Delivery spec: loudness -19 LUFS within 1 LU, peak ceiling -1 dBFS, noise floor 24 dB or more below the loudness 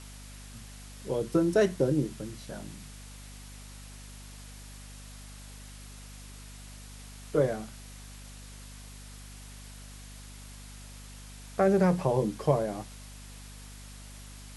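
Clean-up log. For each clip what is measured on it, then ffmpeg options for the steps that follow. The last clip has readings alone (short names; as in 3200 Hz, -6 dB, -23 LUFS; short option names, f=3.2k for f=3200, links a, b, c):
hum 50 Hz; harmonics up to 250 Hz; hum level -45 dBFS; noise floor -46 dBFS; noise floor target -53 dBFS; loudness -28.5 LUFS; peak -11.5 dBFS; loudness target -19.0 LUFS
-> -af "bandreject=f=50:t=h:w=4,bandreject=f=100:t=h:w=4,bandreject=f=150:t=h:w=4,bandreject=f=200:t=h:w=4,bandreject=f=250:t=h:w=4"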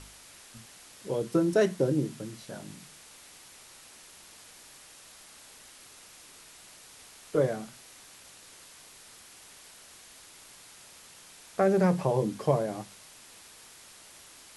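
hum none; noise floor -52 dBFS; noise floor target -53 dBFS
-> -af "afftdn=nr=6:nf=-52"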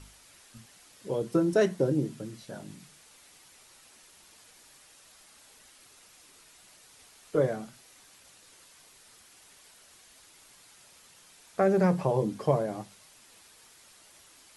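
noise floor -57 dBFS; loudness -28.5 LUFS; peak -11.5 dBFS; loudness target -19.0 LUFS
-> -af "volume=9.5dB"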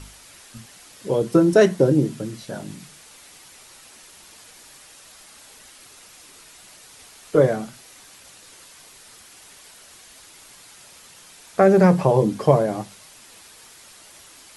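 loudness -19.0 LUFS; peak -2.0 dBFS; noise floor -48 dBFS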